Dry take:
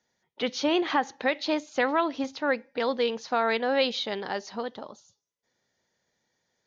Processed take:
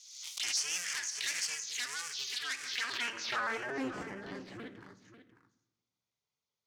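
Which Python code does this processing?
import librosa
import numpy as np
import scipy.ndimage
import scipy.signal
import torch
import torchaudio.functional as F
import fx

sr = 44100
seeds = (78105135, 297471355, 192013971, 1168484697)

p1 = fx.cycle_switch(x, sr, every=2, mode='inverted')
p2 = fx.curve_eq(p1, sr, hz=(190.0, 680.0, 1700.0), db=(0, -13, 13))
p3 = fx.cheby_harmonics(p2, sr, harmonics=(6,), levels_db=(-14,), full_scale_db=3.0)
p4 = fx.peak_eq(p3, sr, hz=6100.0, db=2.5, octaves=0.77)
p5 = fx.env_phaser(p4, sr, low_hz=290.0, high_hz=3800.0, full_db=-18.5)
p6 = 10.0 ** (-22.0 / 20.0) * np.tanh(p5 / 10.0 ** (-22.0 / 20.0))
p7 = fx.filter_sweep_bandpass(p6, sr, from_hz=5700.0, to_hz=330.0, start_s=2.45, end_s=3.91, q=1.0)
p8 = p7 + fx.echo_single(p7, sr, ms=543, db=-12.5, dry=0)
p9 = fx.room_shoebox(p8, sr, seeds[0], volume_m3=310.0, walls='mixed', distance_m=0.32)
p10 = fx.pre_swell(p9, sr, db_per_s=55.0)
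y = p10 * 10.0 ** (-3.0 / 20.0)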